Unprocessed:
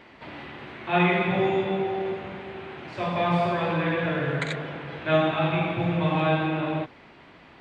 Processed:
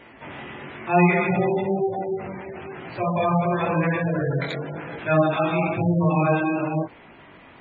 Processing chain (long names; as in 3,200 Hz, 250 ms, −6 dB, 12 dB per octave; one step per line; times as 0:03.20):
0:04.01–0:04.78: dynamic equaliser 1,700 Hz, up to −4 dB, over −42 dBFS, Q 1.3
chorus effect 1 Hz, delay 17 ms, depth 5.7 ms
gate on every frequency bin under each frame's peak −20 dB strong
level +6 dB